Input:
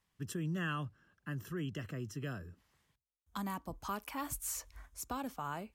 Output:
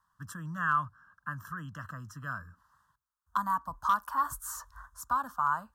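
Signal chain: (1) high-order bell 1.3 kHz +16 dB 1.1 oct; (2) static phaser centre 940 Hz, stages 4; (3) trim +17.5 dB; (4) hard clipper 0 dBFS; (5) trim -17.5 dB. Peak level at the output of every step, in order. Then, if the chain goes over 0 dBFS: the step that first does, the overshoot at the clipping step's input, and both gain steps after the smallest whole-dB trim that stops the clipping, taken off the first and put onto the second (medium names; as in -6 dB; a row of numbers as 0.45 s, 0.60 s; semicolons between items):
-13.0 dBFS, -14.0 dBFS, +3.5 dBFS, 0.0 dBFS, -17.5 dBFS; step 3, 3.5 dB; step 3 +13.5 dB, step 5 -13.5 dB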